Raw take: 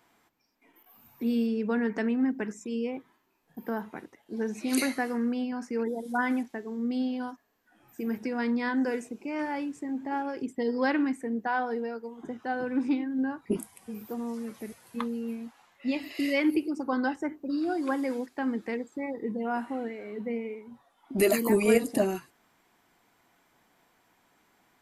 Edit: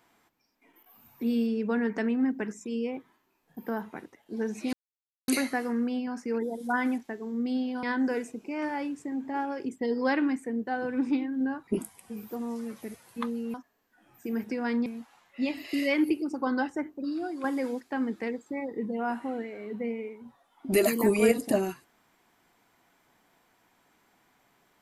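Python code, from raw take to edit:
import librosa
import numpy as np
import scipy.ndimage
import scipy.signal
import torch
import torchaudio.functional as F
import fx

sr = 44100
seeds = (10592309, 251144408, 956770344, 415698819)

y = fx.edit(x, sr, fx.insert_silence(at_s=4.73, length_s=0.55),
    fx.move(start_s=7.28, length_s=1.32, to_s=15.32),
    fx.cut(start_s=11.44, length_s=1.01),
    fx.fade_out_to(start_s=17.3, length_s=0.6, floor_db=-7.5), tone=tone)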